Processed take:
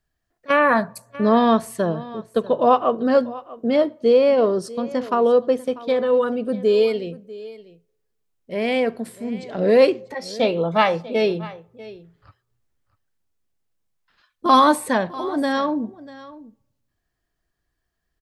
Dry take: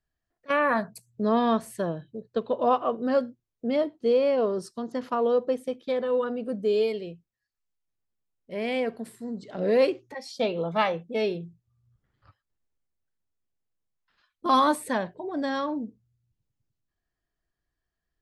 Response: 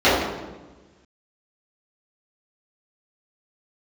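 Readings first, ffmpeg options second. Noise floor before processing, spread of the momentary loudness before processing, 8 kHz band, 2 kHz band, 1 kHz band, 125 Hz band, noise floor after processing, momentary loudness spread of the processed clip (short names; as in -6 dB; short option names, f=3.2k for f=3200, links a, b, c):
-85 dBFS, 14 LU, n/a, +7.0 dB, +7.0 dB, +7.0 dB, -76 dBFS, 15 LU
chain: -filter_complex "[0:a]aecho=1:1:643:0.119,asplit=2[a][b];[1:a]atrim=start_sample=2205,asetrate=57330,aresample=44100,lowshelf=f=410:g=-11.5[c];[b][c]afir=irnorm=-1:irlink=0,volume=-47.5dB[d];[a][d]amix=inputs=2:normalize=0,volume=7dB"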